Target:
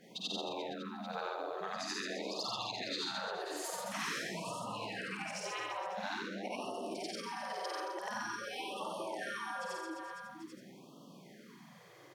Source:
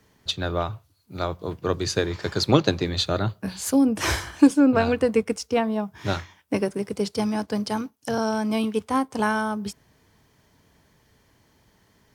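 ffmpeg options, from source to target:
-filter_complex "[0:a]afftfilt=real='re':imag='-im':win_size=8192:overlap=0.75,acrossover=split=340|1400|5400[a][b][c][d];[b]asoftclip=type=hard:threshold=-26.5dB[e];[a][e][c][d]amix=inputs=4:normalize=0,highshelf=f=4.6k:g=-8,aecho=1:1:50|130|258|462.8|790.5:0.631|0.398|0.251|0.158|0.1,afftfilt=real='re*lt(hypot(re,im),0.141)':imag='im*lt(hypot(re,im),0.141)':win_size=1024:overlap=0.75,afreqshift=110,acompressor=threshold=-51dB:ratio=2.5,afftfilt=real='re*(1-between(b*sr/1024,210*pow(1900/210,0.5+0.5*sin(2*PI*0.47*pts/sr))/1.41,210*pow(1900/210,0.5+0.5*sin(2*PI*0.47*pts/sr))*1.41))':imag='im*(1-between(b*sr/1024,210*pow(1900/210,0.5+0.5*sin(2*PI*0.47*pts/sr))/1.41,210*pow(1900/210,0.5+0.5*sin(2*PI*0.47*pts/sr))*1.41))':win_size=1024:overlap=0.75,volume=8.5dB"

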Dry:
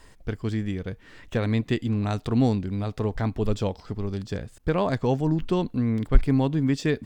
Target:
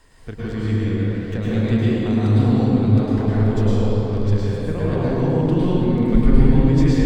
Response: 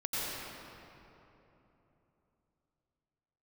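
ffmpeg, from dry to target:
-filter_complex "[0:a]acrossover=split=400[a][b];[b]acompressor=threshold=-32dB:ratio=6[c];[a][c]amix=inputs=2:normalize=0[d];[1:a]atrim=start_sample=2205,asetrate=36603,aresample=44100[e];[d][e]afir=irnorm=-1:irlink=0,volume=-1dB"

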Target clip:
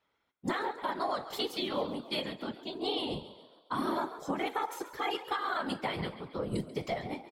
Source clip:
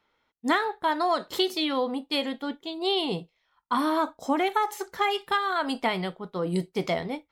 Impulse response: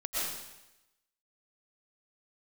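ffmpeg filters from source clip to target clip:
-filter_complex "[0:a]afftfilt=real='hypot(re,im)*cos(2*PI*random(0))':imag='hypot(re,im)*sin(2*PI*random(1))':win_size=512:overlap=0.75,asplit=6[a][b][c][d][e][f];[b]adelay=137,afreqshift=51,volume=-15.5dB[g];[c]adelay=274,afreqshift=102,volume=-21.2dB[h];[d]adelay=411,afreqshift=153,volume=-26.9dB[i];[e]adelay=548,afreqshift=204,volume=-32.5dB[j];[f]adelay=685,afreqshift=255,volume=-38.2dB[k];[a][g][h][i][j][k]amix=inputs=6:normalize=0,alimiter=limit=-22dB:level=0:latency=1:release=130"

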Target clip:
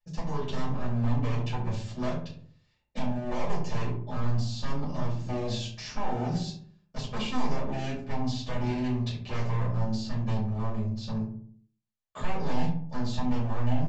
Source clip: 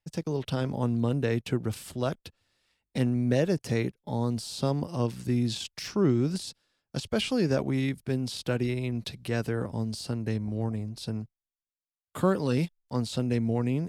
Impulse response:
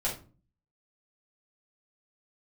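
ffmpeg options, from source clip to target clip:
-filter_complex "[0:a]alimiter=limit=-18dB:level=0:latency=1:release=260,aresample=16000,aeval=exprs='0.0473*(abs(mod(val(0)/0.0473+3,4)-2)-1)':c=same,aresample=44100,asplit=2[a][b];[b]adelay=68,lowpass=f=1.2k:p=1,volume=-6dB,asplit=2[c][d];[d]adelay=68,lowpass=f=1.2k:p=1,volume=0.5,asplit=2[e][f];[f]adelay=68,lowpass=f=1.2k:p=1,volume=0.5,asplit=2[g][h];[h]adelay=68,lowpass=f=1.2k:p=1,volume=0.5,asplit=2[i][j];[j]adelay=68,lowpass=f=1.2k:p=1,volume=0.5,asplit=2[k][l];[l]adelay=68,lowpass=f=1.2k:p=1,volume=0.5[m];[a][c][e][g][i][k][m]amix=inputs=7:normalize=0[n];[1:a]atrim=start_sample=2205,asetrate=52920,aresample=44100[o];[n][o]afir=irnorm=-1:irlink=0,volume=-5.5dB"

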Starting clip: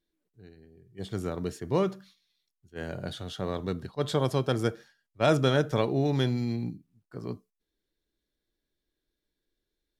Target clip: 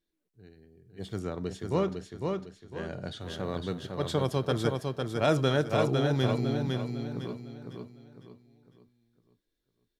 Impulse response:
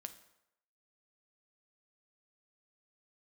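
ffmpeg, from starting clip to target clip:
-filter_complex "[0:a]asettb=1/sr,asplit=3[a][b][c];[a]atrim=end=1.194[d];[b]atrim=start=1.19:end=3.21,asetpts=PTS-STARTPTS,afade=t=in:d=0.004:c=qsin,afade=t=out:st=2.016:d=0.004:c=qsin,lowpass=7.7k[e];[c]atrim=start=3.206[f];[d][e]acrossfade=d=0.004:c1=hsin:c2=qsin[g];[g][f]acrossfade=d=0.004:c1=qsin:c2=hsin,aecho=1:1:504|1008|1512|2016|2520:0.631|0.233|0.0864|0.032|0.0118,volume=-2dB"

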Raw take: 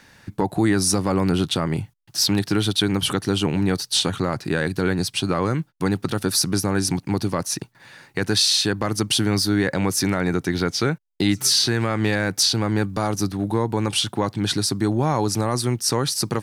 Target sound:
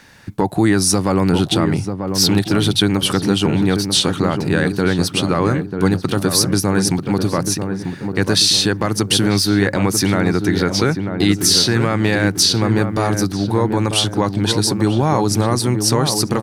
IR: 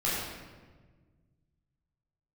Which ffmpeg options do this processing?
-filter_complex "[0:a]asplit=2[a][b];[b]adelay=942,lowpass=f=1k:p=1,volume=-5.5dB,asplit=2[c][d];[d]adelay=942,lowpass=f=1k:p=1,volume=0.47,asplit=2[e][f];[f]adelay=942,lowpass=f=1k:p=1,volume=0.47,asplit=2[g][h];[h]adelay=942,lowpass=f=1k:p=1,volume=0.47,asplit=2[i][j];[j]adelay=942,lowpass=f=1k:p=1,volume=0.47,asplit=2[k][l];[l]adelay=942,lowpass=f=1k:p=1,volume=0.47[m];[a][c][e][g][i][k][m]amix=inputs=7:normalize=0,volume=4.5dB"

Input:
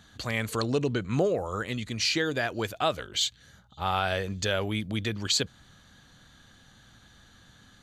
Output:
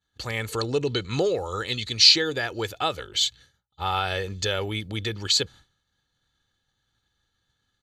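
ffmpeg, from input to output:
-af "asetnsamples=n=441:p=0,asendcmd='0.87 equalizer g 15;2.16 equalizer g 4',equalizer=f=4.2k:t=o:w=0.96:g=2,agate=range=-33dB:threshold=-41dB:ratio=3:detection=peak,aecho=1:1:2.3:0.45"

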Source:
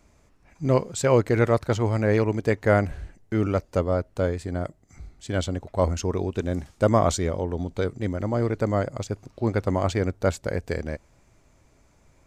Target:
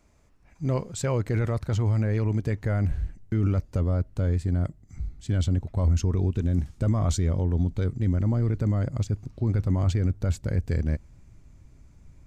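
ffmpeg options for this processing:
-af "asubboost=boost=5:cutoff=240,alimiter=limit=-12dB:level=0:latency=1:release=14,volume=-4dB"

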